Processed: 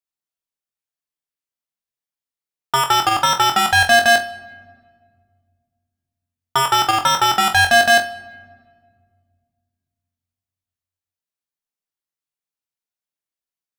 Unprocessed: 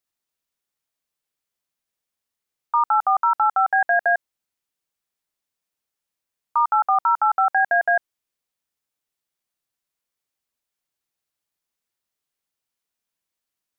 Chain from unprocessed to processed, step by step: sample leveller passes 5; on a send: flutter echo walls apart 3.9 m, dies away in 0.23 s; on the sum: shoebox room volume 2900 m³, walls mixed, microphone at 0.33 m

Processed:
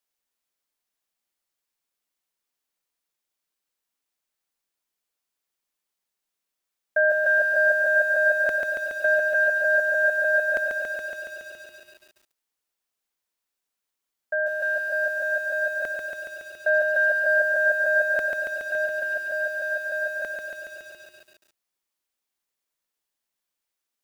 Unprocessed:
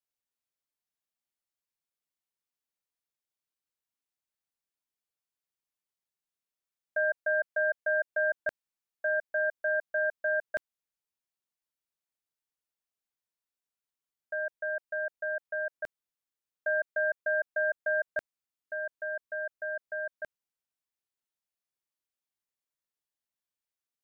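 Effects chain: bell 110 Hz -11.5 dB 0.93 oct; lo-fi delay 0.14 s, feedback 80%, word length 10-bit, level -4 dB; gain +8 dB

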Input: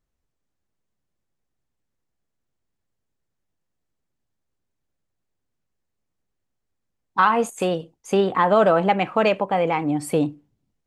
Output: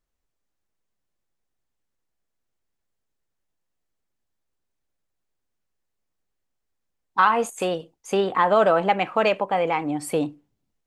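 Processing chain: bell 120 Hz -7 dB 2.8 oct

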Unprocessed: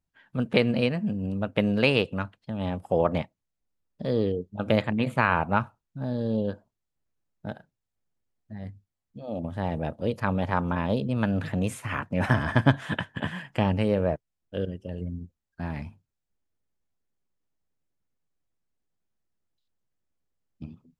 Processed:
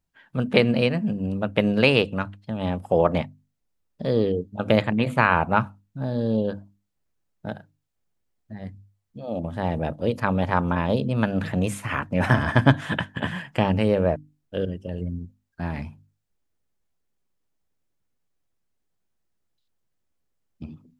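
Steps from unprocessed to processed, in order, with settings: notches 50/100/150/200/250/300 Hz; gain +4 dB

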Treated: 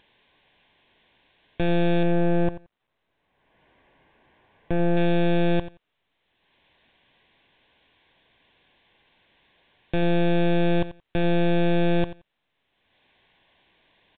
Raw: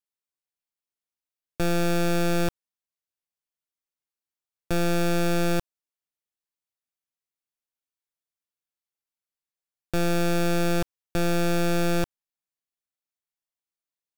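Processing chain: 2.03–4.97 LPF 1700 Hz 12 dB/oct; upward compressor, threshold -32 dBFS; Butterworth band-stop 1300 Hz, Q 3.7; feedback echo 87 ms, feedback 15%, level -14.5 dB; gain +1.5 dB; µ-law 64 kbps 8000 Hz

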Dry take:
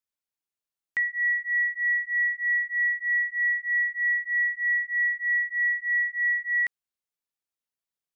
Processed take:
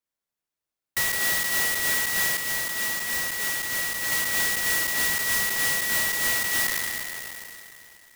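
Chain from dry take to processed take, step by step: spectral trails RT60 2.98 s; 2.37–4.12 high shelf 2000 Hz -7 dB; clock jitter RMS 0.084 ms

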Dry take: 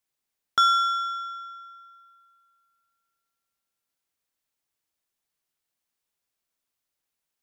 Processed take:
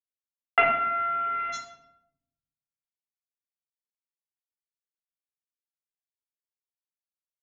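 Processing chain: companded quantiser 2-bit; rippled Chebyshev low-pass 2900 Hz, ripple 3 dB, from 1.52 s 7100 Hz; shoebox room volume 2100 m³, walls furnished, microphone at 3.9 m

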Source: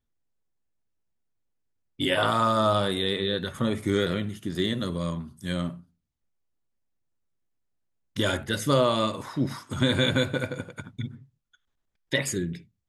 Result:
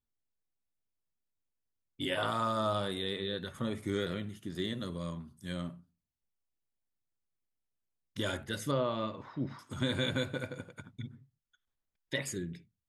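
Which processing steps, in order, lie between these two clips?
8.71–9.59 air absorption 240 m; gain -9 dB

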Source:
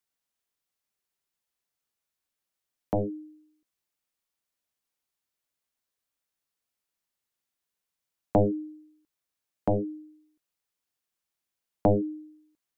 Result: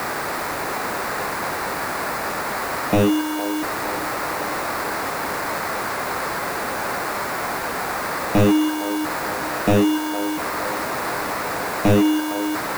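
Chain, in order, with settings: delta modulation 16 kbps, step -40.5 dBFS; low shelf 240 Hz +9.5 dB; sample-and-hold 14×; overdrive pedal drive 32 dB, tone 1900 Hz, clips at -8 dBFS; requantised 6-bit, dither triangular; on a send: band-limited delay 0.46 s, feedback 72%, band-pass 840 Hz, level -9 dB

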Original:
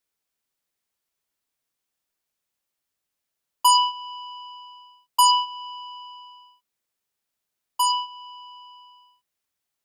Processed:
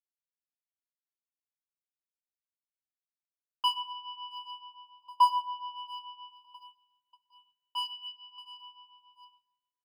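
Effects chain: LPF 3300 Hz 12 dB/oct; in parallel at -5 dB: hard clip -27.5 dBFS, distortion -5 dB; on the sum: fixed phaser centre 1900 Hz, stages 6; doubler 40 ms -13 dB; feedback echo 0.675 s, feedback 52%, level -20 dB; expander -52 dBFS; grains 0.188 s, grains 7/s, pitch spread up and down by 0 st; on a send at -18 dB: dynamic EQ 1000 Hz, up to +8 dB, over -36 dBFS, Q 1.9 + reverb RT60 1.1 s, pre-delay 3 ms; on the sum: cascading phaser falling 0.21 Hz; gain -1 dB

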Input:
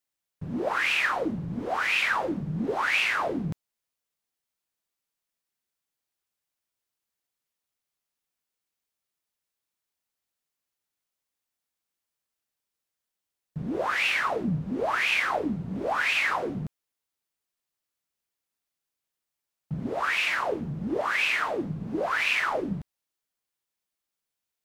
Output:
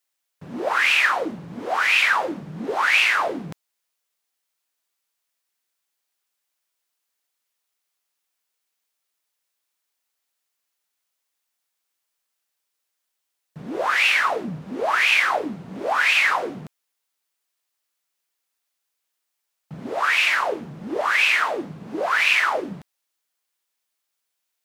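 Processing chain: HPF 660 Hz 6 dB/oct; gain +7.5 dB

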